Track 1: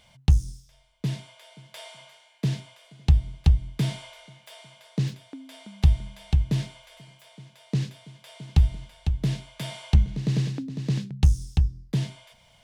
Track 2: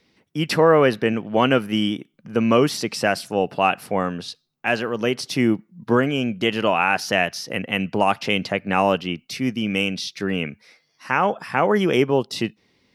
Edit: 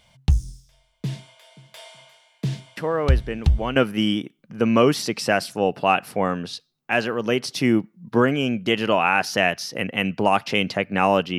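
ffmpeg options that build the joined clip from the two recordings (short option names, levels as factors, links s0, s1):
-filter_complex "[1:a]asplit=2[s0][s1];[0:a]apad=whole_dur=11.38,atrim=end=11.38,atrim=end=3.762[s2];[s1]atrim=start=1.508:end=9.13[s3];[s0]atrim=start=0.52:end=1.51,asetpts=PTS-STARTPTS,volume=0.355,afade=t=in:d=0.004:c=hsin,afade=t=out:st=0.986:d=0.004:c=hsin,adelay=2770[s4];[s2][s3]acrossfade=d=0.004:c1=hsin:c2=hsin[s5];[s5][s4]amix=inputs=2:normalize=0"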